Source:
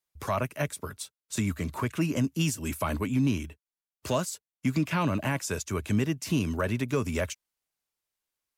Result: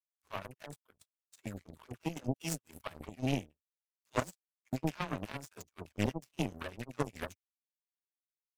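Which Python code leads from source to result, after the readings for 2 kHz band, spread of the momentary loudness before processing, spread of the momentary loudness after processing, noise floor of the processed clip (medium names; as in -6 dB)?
-10.0 dB, 8 LU, 14 LU, under -85 dBFS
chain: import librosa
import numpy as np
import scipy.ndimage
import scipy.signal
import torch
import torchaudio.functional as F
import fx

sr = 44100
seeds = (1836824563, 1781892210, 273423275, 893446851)

y = fx.dispersion(x, sr, late='lows', ms=83.0, hz=560.0)
y = fx.power_curve(y, sr, exponent=3.0)
y = y * librosa.db_to_amplitude(2.5)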